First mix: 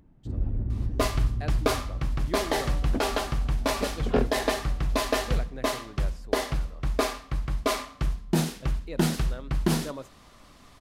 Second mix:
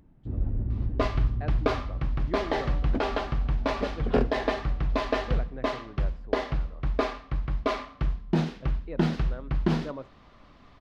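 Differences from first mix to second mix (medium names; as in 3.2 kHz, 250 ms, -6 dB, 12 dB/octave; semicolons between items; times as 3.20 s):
speech: add low-pass 1.8 kHz 12 dB/octave; second sound: add distance through air 230 m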